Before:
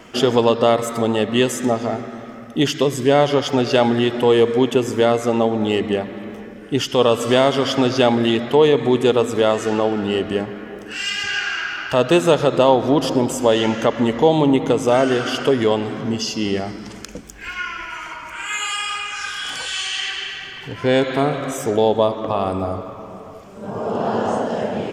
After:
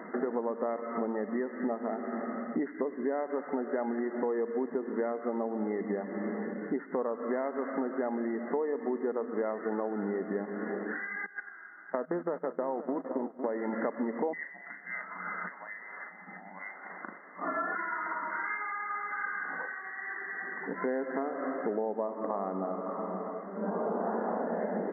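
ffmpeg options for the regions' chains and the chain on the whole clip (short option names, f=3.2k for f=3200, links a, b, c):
-filter_complex "[0:a]asettb=1/sr,asplit=3[a][b][c];[a]atrim=end=11.264[d];[b]atrim=start=11.26:end=13.73,asetpts=PTS-STARTPTS,afade=t=in:d=0.004:c=qsin,afade=t=out:st=2.466:d=0.004:c=qsin,agate=range=-23dB:threshold=-20dB:ratio=16:release=100:detection=peak,acompressor=threshold=-22dB:ratio=2:attack=3.2:release=140:knee=1:detection=peak,aecho=1:1:505:0.178,atrim=end_sample=108927[e];[c]atrim=start=13.726[f];[d][e]acrossfade=d=0.004:c1=hsin:c2=qsin[g];[g][f]acrossfade=d=0.004:c1=qsin:c2=hsin,asettb=1/sr,asplit=3[h][i][j];[h]atrim=end=14.334[k];[i]atrim=start=14.33:end=17.75,asetpts=PTS-STARTPTS,afade=t=in:d=0.004:c=qsin,afade=t=out:st=3.416:d=0.004:c=qsin,lowpass=f=2.4k:t=q:w=0.5098,lowpass=f=2.4k:t=q:w=0.6013,lowpass=f=2.4k:t=q:w=0.9,lowpass=f=2.4k:t=q:w=2.563,afreqshift=-2800,equalizer=f=160:t=o:w=1.6:g=8.5,asplit=2[l][m];[m]adelay=38,volume=-6dB[n];[l][n]amix=inputs=2:normalize=0,atrim=end_sample=150822[o];[j]atrim=start=17.746[p];[k][o]acrossfade=d=0.004:c1=hsin:c2=qsin[q];[q][p]acrossfade=d=0.004:c1=qsin:c2=hsin,acompressor=threshold=-29dB:ratio=8,afftfilt=real='re*between(b*sr/4096,170,2100)':imag='im*between(b*sr/4096,170,2100)':win_size=4096:overlap=0.75"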